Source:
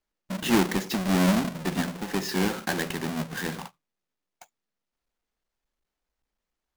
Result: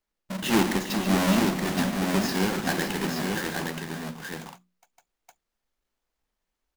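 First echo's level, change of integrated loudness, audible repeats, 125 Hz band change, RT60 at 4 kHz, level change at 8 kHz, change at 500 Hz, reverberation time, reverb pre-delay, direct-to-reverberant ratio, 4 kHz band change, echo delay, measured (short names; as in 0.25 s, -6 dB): -11.0 dB, +0.5 dB, 5, +0.5 dB, none, +2.5 dB, +1.5 dB, none, none, none, +2.5 dB, 54 ms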